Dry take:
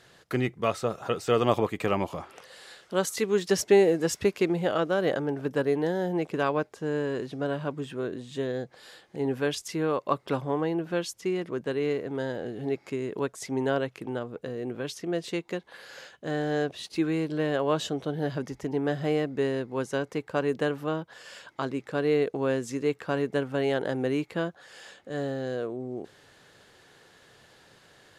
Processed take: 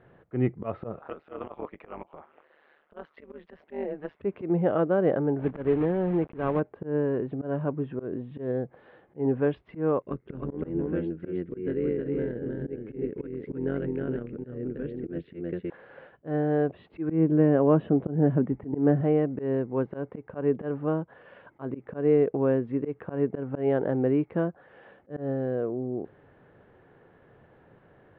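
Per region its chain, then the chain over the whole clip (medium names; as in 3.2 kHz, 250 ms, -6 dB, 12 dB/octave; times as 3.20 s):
0.99–4.20 s: high-pass 1.2 kHz 6 dB/octave + AM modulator 150 Hz, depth 80%
5.39–6.62 s: block-companded coder 3-bit + dynamic bell 690 Hz, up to -3 dB, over -35 dBFS, Q 0.86
10.02–15.70 s: high-order bell 810 Hz -13 dB 1.3 oct + AM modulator 88 Hz, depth 55% + delay 313 ms -3 dB
17.09–19.01 s: Chebyshev low-pass 2.5 kHz + peaking EQ 220 Hz +8 dB 1.7 oct
whole clip: Bessel low-pass 1.6 kHz, order 8; tilt shelf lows +5 dB; slow attack 130 ms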